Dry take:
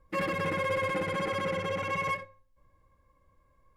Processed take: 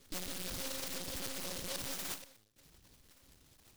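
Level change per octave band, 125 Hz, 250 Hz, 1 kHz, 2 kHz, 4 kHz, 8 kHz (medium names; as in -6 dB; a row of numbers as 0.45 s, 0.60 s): -13.5 dB, -10.5 dB, -19.0 dB, -15.5 dB, 0.0 dB, +10.5 dB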